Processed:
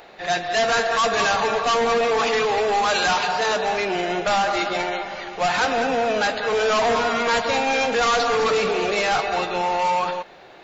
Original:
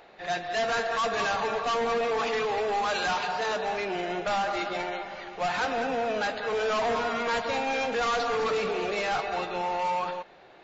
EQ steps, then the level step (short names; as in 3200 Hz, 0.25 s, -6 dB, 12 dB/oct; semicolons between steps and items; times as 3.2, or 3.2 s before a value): high shelf 5300 Hz +7 dB; +7.0 dB